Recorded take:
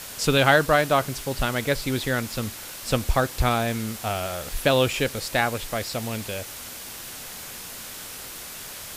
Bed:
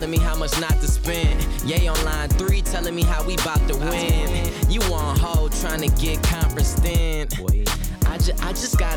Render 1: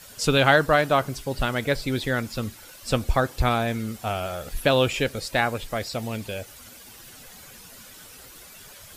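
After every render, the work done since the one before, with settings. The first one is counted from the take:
broadband denoise 11 dB, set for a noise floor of −38 dBFS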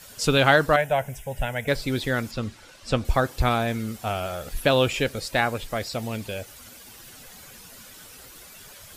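0:00.76–0:01.68: phaser with its sweep stopped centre 1,200 Hz, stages 6
0:02.31–0:03.05: high-frequency loss of the air 66 metres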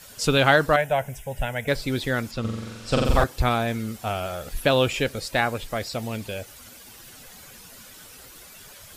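0:02.40–0:03.24: flutter between parallel walls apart 7.6 metres, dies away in 1.3 s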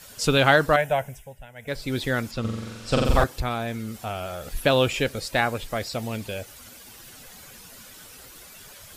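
0:00.92–0:02.01: duck −17 dB, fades 0.47 s
0:03.40–0:04.53: downward compressor 1.5 to 1, threshold −32 dBFS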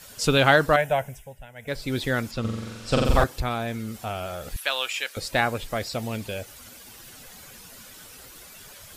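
0:04.56–0:05.17: high-pass filter 1,200 Hz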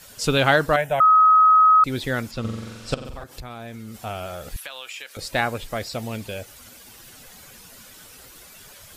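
0:01.00–0:01.84: beep over 1,270 Hz −10.5 dBFS
0:02.94–0:03.96: downward compressor 8 to 1, threshold −32 dBFS
0:04.61–0:05.19: downward compressor, threshold −32 dBFS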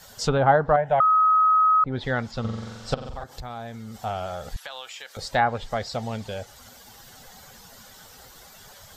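treble cut that deepens with the level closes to 1,100 Hz, closed at −15 dBFS
thirty-one-band graphic EQ 315 Hz −10 dB, 800 Hz +7 dB, 2,500 Hz −9 dB, 10,000 Hz −12 dB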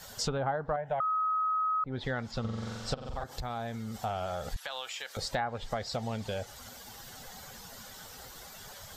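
downward compressor 4 to 1, threshold −31 dBFS, peak gain reduction 15.5 dB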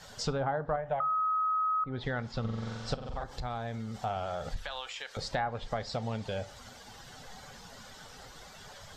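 high-frequency loss of the air 65 metres
rectangular room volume 460 cubic metres, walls furnished, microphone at 0.39 metres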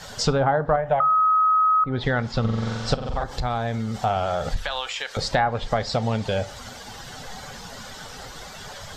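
level +11 dB

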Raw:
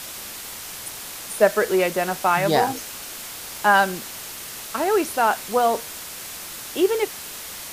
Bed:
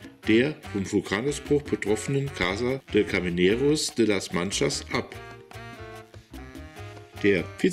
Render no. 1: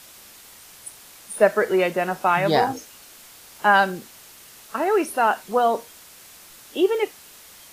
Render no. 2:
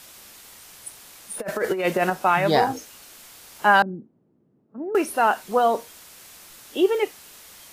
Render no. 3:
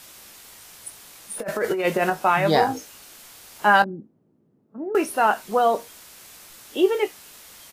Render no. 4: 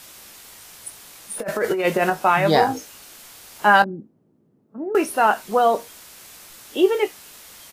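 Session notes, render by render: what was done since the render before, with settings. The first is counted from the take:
noise reduction from a noise print 11 dB
0:01.39–0:02.10: compressor whose output falls as the input rises −22 dBFS, ratio −0.5; 0:03.82–0:04.95: flat-topped band-pass 210 Hz, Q 1
double-tracking delay 19 ms −11 dB
level +2 dB

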